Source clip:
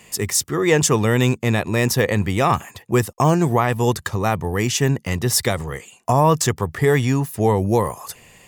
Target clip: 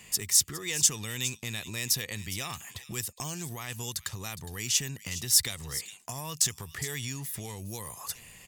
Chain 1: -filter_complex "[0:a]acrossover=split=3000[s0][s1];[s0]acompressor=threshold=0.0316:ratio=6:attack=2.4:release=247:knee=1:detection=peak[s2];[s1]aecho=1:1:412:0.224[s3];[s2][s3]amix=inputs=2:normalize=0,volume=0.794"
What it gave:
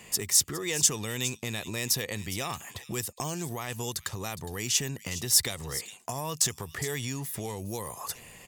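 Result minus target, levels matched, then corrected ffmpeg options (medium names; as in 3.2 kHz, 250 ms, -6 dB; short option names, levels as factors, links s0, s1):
500 Hz band +7.0 dB
-filter_complex "[0:a]acrossover=split=3000[s0][s1];[s0]acompressor=threshold=0.0316:ratio=6:attack=2.4:release=247:knee=1:detection=peak,equalizer=f=530:w=0.47:g=-8[s2];[s1]aecho=1:1:412:0.224[s3];[s2][s3]amix=inputs=2:normalize=0,volume=0.794"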